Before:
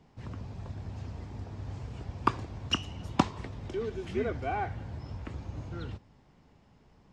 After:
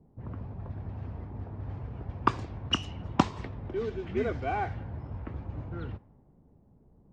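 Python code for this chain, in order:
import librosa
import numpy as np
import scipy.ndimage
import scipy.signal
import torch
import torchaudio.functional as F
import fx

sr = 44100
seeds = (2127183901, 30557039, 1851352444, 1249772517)

y = fx.env_lowpass(x, sr, base_hz=470.0, full_db=-27.0)
y = y * librosa.db_to_amplitude(1.5)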